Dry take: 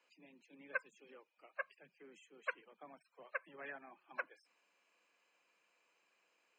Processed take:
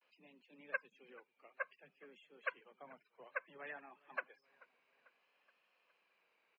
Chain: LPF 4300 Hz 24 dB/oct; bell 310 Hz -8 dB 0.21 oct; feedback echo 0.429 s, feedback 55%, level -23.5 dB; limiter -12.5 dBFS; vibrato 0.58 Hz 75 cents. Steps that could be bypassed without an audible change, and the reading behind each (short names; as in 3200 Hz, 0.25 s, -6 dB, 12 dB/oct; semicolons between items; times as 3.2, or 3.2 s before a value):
limiter -12.5 dBFS: input peak -24.0 dBFS